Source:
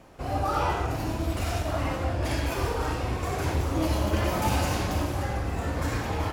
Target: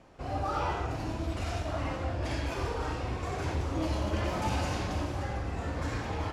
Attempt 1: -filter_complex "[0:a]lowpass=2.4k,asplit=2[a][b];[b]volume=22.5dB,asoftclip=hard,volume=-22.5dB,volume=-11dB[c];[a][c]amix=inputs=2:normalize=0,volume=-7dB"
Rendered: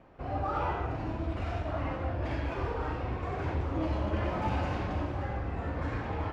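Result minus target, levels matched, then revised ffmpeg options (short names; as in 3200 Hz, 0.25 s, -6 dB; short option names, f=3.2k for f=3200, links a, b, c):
8000 Hz band -16.0 dB
-filter_complex "[0:a]lowpass=7.2k,asplit=2[a][b];[b]volume=22.5dB,asoftclip=hard,volume=-22.5dB,volume=-11dB[c];[a][c]amix=inputs=2:normalize=0,volume=-7dB"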